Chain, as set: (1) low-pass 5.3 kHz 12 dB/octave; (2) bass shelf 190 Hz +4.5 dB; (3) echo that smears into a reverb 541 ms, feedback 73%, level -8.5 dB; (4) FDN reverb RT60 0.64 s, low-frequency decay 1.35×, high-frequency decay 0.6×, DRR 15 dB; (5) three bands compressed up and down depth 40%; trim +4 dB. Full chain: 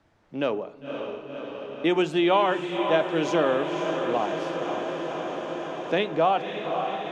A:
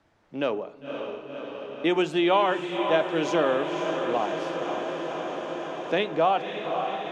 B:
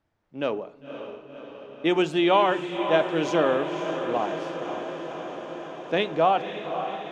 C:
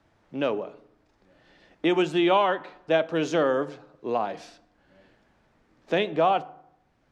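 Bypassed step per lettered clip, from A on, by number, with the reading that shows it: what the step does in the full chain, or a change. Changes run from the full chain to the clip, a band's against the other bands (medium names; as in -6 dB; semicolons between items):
2, 125 Hz band -2.5 dB; 5, crest factor change +2.0 dB; 3, momentary loudness spread change +3 LU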